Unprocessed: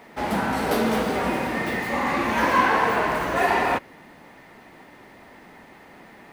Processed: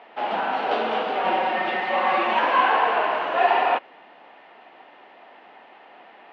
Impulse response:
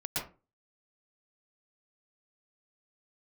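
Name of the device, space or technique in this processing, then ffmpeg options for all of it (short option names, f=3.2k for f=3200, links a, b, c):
phone earpiece: -filter_complex "[0:a]asettb=1/sr,asplit=3[a][b][c];[a]atrim=end=1.244[d];[b]atrim=start=1.24:end=2.39,asetpts=PTS-STARTPTS,afade=t=in:d=0.004:c=qsin,afade=t=out:st=1.146:d=0.004:c=qsin,aecho=1:1:5.4:0.97,atrim=end_sample=50715[e];[c]atrim=start=2.386[f];[d][e]acrossfade=d=0.004:c1=hsin:c2=qsin[g];[g][f]acrossfade=d=0.004:c1=qsin:c2=hsin,highpass=470,equalizer=f=730:t=q:w=4:g=6,equalizer=f=2k:t=q:w=4:g=-5,equalizer=f=2.9k:t=q:w=4:g=6,lowpass=f=3.5k:w=0.5412,lowpass=f=3.5k:w=1.3066"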